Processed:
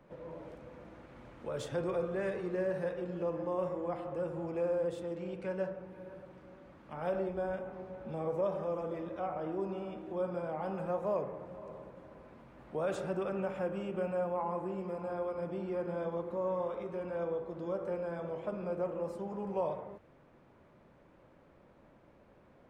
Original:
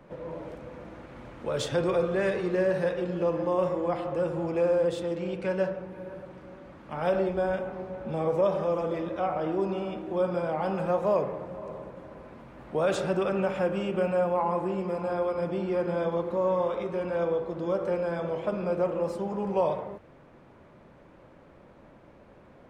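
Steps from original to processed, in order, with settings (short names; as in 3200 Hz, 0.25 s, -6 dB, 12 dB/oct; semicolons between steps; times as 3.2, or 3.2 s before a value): dynamic EQ 4100 Hz, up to -6 dB, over -50 dBFS, Q 0.8; gain -8 dB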